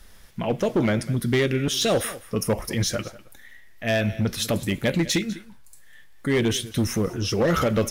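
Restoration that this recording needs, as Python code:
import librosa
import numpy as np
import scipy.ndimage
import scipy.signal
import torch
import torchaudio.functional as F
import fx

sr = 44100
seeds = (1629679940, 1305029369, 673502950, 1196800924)

y = fx.fix_declip(x, sr, threshold_db=-16.0)
y = fx.fix_declick_ar(y, sr, threshold=6.5)
y = fx.fix_echo_inverse(y, sr, delay_ms=199, level_db=-19.0)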